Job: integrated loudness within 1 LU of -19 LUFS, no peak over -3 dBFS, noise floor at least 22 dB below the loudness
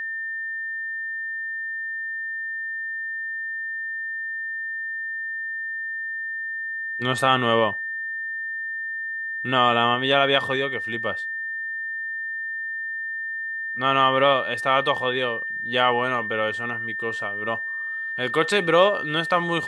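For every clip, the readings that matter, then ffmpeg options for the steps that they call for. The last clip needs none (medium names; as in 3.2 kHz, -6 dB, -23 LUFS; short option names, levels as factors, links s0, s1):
steady tone 1.8 kHz; tone level -27 dBFS; loudness -24.0 LUFS; peak level -4.0 dBFS; loudness target -19.0 LUFS
-> -af "bandreject=f=1800:w=30"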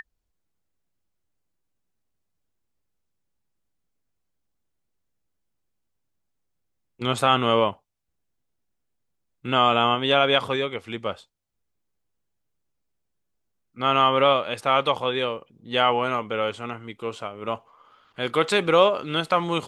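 steady tone not found; loudness -22.5 LUFS; peak level -5.0 dBFS; loudness target -19.0 LUFS
-> -af "volume=1.5,alimiter=limit=0.708:level=0:latency=1"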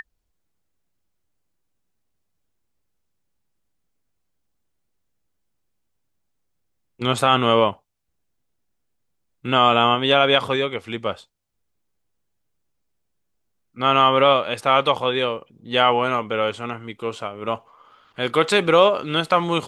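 loudness -19.5 LUFS; peak level -3.0 dBFS; noise floor -73 dBFS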